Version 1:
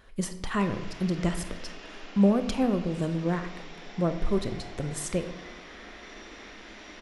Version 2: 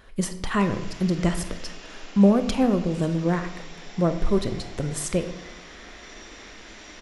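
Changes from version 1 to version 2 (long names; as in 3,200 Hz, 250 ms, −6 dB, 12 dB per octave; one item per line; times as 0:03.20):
speech +4.5 dB
background: remove high-frequency loss of the air 120 metres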